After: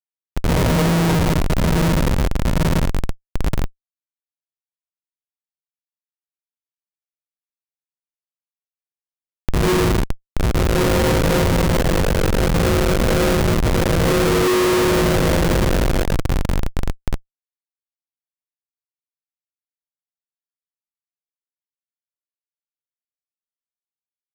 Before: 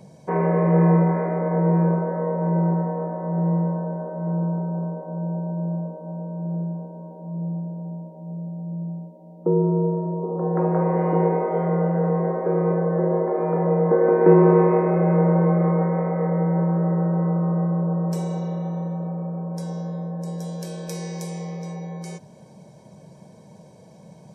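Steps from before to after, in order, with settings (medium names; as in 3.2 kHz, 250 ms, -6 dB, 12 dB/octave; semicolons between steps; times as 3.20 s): gated-style reverb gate 230 ms rising, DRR -8 dB; Schmitt trigger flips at -11 dBFS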